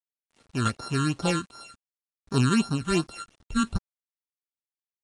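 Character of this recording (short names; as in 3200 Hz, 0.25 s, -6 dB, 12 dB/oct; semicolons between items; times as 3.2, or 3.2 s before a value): a buzz of ramps at a fixed pitch in blocks of 32 samples; phasing stages 8, 2.7 Hz, lowest notch 680–2800 Hz; a quantiser's noise floor 10-bit, dither none; AAC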